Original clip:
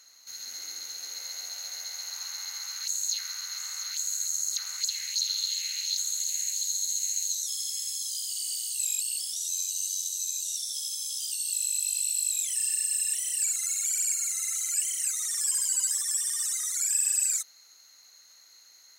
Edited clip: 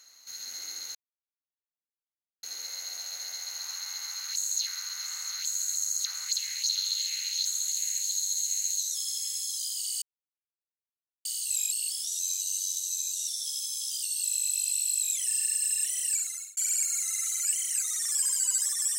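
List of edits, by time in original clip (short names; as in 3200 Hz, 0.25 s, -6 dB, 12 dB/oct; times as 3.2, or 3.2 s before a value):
0.95 insert silence 1.48 s
8.54 insert silence 1.23 s
13.39–13.86 fade out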